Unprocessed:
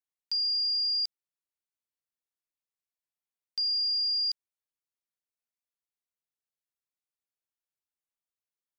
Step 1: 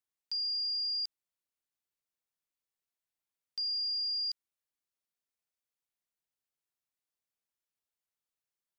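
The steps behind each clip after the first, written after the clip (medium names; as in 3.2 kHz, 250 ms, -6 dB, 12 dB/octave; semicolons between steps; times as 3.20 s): peak limiter -30.5 dBFS, peak gain reduction 5.5 dB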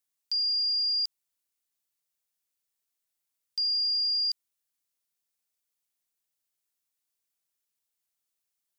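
treble shelf 3.6 kHz +10 dB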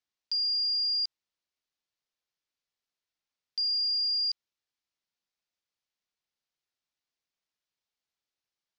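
low-pass 5.5 kHz 24 dB/octave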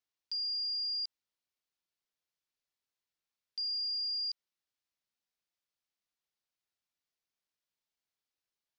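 peak limiter -29 dBFS, peak gain reduction 4 dB; trim -3 dB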